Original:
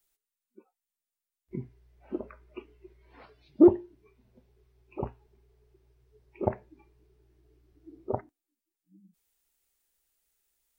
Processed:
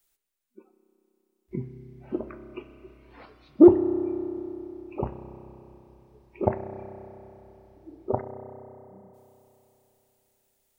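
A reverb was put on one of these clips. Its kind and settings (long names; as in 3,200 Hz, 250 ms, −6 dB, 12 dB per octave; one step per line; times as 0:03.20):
spring reverb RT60 3.4 s, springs 31 ms, chirp 50 ms, DRR 8.5 dB
level +4 dB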